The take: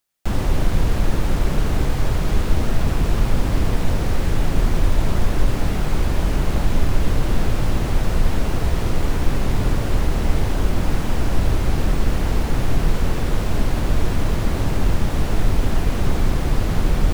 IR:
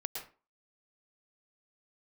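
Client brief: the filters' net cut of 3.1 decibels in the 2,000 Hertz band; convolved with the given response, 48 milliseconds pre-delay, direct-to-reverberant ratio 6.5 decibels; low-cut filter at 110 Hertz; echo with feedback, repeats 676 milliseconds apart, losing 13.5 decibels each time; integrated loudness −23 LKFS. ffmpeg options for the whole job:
-filter_complex "[0:a]highpass=110,equalizer=frequency=2000:width_type=o:gain=-4,aecho=1:1:676|1352:0.211|0.0444,asplit=2[link_01][link_02];[1:a]atrim=start_sample=2205,adelay=48[link_03];[link_02][link_03]afir=irnorm=-1:irlink=0,volume=-7.5dB[link_04];[link_01][link_04]amix=inputs=2:normalize=0,volume=3dB"

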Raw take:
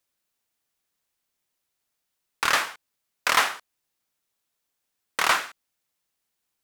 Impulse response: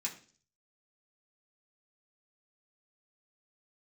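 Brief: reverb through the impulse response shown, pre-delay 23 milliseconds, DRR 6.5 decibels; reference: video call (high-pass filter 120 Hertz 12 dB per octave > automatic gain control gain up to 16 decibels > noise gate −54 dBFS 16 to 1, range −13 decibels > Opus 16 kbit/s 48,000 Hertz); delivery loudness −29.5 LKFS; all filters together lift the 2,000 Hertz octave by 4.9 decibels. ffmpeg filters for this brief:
-filter_complex "[0:a]equalizer=frequency=2000:width_type=o:gain=6,asplit=2[link_01][link_02];[1:a]atrim=start_sample=2205,adelay=23[link_03];[link_02][link_03]afir=irnorm=-1:irlink=0,volume=-7.5dB[link_04];[link_01][link_04]amix=inputs=2:normalize=0,highpass=120,dynaudnorm=maxgain=16dB,agate=range=-13dB:threshold=-54dB:ratio=16,volume=-9dB" -ar 48000 -c:a libopus -b:a 16k

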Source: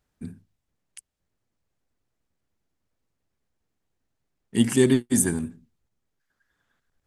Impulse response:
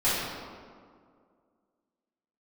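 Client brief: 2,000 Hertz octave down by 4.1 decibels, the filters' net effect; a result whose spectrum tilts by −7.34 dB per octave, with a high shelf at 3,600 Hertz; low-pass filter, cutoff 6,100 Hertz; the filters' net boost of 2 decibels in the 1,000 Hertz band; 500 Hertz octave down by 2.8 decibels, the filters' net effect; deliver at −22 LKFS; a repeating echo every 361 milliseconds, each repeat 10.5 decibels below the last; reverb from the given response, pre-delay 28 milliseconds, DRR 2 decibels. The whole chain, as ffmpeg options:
-filter_complex "[0:a]lowpass=6100,equalizer=frequency=500:width_type=o:gain=-5,equalizer=frequency=1000:width_type=o:gain=5.5,equalizer=frequency=2000:width_type=o:gain=-4.5,highshelf=frequency=3600:gain=-7.5,aecho=1:1:361|722|1083:0.299|0.0896|0.0269,asplit=2[link_01][link_02];[1:a]atrim=start_sample=2205,adelay=28[link_03];[link_02][link_03]afir=irnorm=-1:irlink=0,volume=-16dB[link_04];[link_01][link_04]amix=inputs=2:normalize=0,volume=0.5dB"

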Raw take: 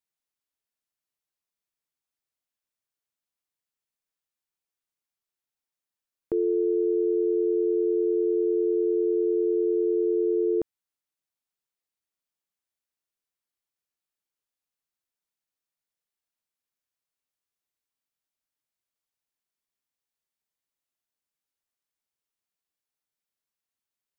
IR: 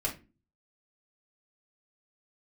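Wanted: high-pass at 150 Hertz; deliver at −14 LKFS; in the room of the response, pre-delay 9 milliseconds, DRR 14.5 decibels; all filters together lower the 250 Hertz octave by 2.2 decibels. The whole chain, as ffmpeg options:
-filter_complex "[0:a]highpass=150,equalizer=frequency=250:width_type=o:gain=-4,asplit=2[link_01][link_02];[1:a]atrim=start_sample=2205,adelay=9[link_03];[link_02][link_03]afir=irnorm=-1:irlink=0,volume=-19.5dB[link_04];[link_01][link_04]amix=inputs=2:normalize=0,volume=10.5dB"

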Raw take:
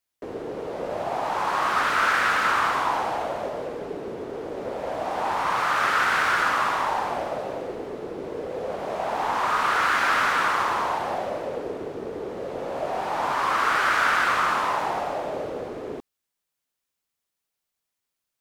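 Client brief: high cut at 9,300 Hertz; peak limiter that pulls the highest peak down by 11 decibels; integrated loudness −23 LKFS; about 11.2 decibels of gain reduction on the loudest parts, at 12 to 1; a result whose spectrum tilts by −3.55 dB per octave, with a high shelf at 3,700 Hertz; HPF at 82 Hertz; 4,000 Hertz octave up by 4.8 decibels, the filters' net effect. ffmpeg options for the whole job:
ffmpeg -i in.wav -af "highpass=82,lowpass=9300,highshelf=frequency=3700:gain=5.5,equalizer=frequency=4000:width_type=o:gain=3,acompressor=threshold=-28dB:ratio=12,volume=14.5dB,alimiter=limit=-15dB:level=0:latency=1" out.wav

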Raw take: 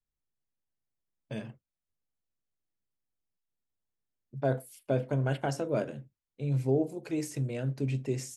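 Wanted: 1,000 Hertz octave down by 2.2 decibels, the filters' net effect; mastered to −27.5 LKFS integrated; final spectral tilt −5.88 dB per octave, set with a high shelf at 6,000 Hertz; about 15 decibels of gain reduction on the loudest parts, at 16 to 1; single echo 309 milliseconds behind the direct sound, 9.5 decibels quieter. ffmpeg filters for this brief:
ffmpeg -i in.wav -af "equalizer=frequency=1000:width_type=o:gain=-4,highshelf=frequency=6000:gain=5,acompressor=threshold=-38dB:ratio=16,aecho=1:1:309:0.335,volume=16.5dB" out.wav

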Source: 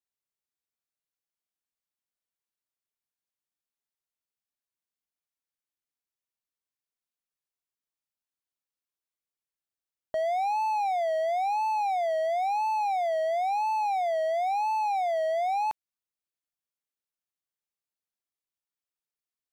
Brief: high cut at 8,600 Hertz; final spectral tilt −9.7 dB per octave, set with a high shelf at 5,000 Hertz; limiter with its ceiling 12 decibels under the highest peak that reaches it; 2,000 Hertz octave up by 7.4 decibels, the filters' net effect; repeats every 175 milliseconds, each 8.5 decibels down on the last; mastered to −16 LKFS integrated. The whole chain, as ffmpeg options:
ffmpeg -i in.wav -af "lowpass=8600,equalizer=frequency=2000:width_type=o:gain=7,highshelf=frequency=5000:gain=8,alimiter=level_in=8.5dB:limit=-24dB:level=0:latency=1,volume=-8.5dB,aecho=1:1:175|350|525|700:0.376|0.143|0.0543|0.0206,volume=21.5dB" out.wav

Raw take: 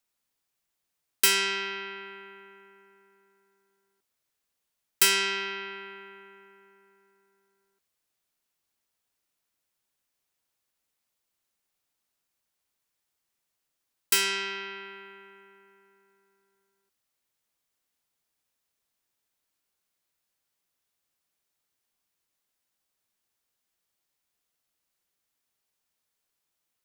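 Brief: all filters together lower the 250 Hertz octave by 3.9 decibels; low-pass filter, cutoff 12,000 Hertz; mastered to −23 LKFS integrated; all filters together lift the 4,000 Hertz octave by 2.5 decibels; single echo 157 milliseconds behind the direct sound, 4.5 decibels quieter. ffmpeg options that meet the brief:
ffmpeg -i in.wav -af "lowpass=12000,equalizer=frequency=250:width_type=o:gain=-8,equalizer=frequency=4000:width_type=o:gain=3.5,aecho=1:1:157:0.596,volume=1dB" out.wav

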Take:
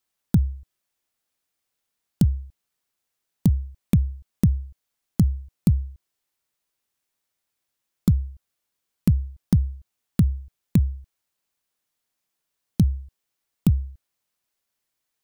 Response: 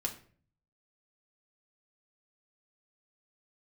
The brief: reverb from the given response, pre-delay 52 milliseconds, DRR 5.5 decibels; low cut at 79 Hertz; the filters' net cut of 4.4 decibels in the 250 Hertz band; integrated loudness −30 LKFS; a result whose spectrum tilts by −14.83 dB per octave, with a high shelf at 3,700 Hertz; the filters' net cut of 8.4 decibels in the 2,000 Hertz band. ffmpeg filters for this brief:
-filter_complex "[0:a]highpass=79,equalizer=frequency=250:width_type=o:gain=-7,equalizer=frequency=2000:width_type=o:gain=-8.5,highshelf=frequency=3700:gain=-8.5,asplit=2[link_01][link_02];[1:a]atrim=start_sample=2205,adelay=52[link_03];[link_02][link_03]afir=irnorm=-1:irlink=0,volume=-7.5dB[link_04];[link_01][link_04]amix=inputs=2:normalize=0,volume=-2.5dB"

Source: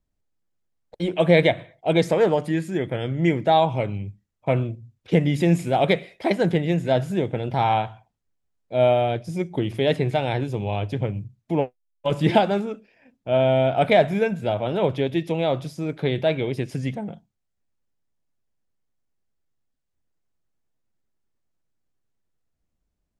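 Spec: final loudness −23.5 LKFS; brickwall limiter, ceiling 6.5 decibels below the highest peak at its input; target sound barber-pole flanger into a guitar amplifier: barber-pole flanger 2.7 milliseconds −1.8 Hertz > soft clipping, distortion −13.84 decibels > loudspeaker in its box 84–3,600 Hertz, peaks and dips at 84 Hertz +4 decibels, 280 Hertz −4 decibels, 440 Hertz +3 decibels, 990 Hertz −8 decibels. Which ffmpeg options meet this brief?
ffmpeg -i in.wav -filter_complex "[0:a]alimiter=limit=-10.5dB:level=0:latency=1,asplit=2[link_01][link_02];[link_02]adelay=2.7,afreqshift=-1.8[link_03];[link_01][link_03]amix=inputs=2:normalize=1,asoftclip=threshold=-20dB,highpass=84,equalizer=frequency=84:width_type=q:width=4:gain=4,equalizer=frequency=280:width_type=q:width=4:gain=-4,equalizer=frequency=440:width_type=q:width=4:gain=3,equalizer=frequency=990:width_type=q:width=4:gain=-8,lowpass=frequency=3600:width=0.5412,lowpass=frequency=3600:width=1.3066,volume=6dB" out.wav

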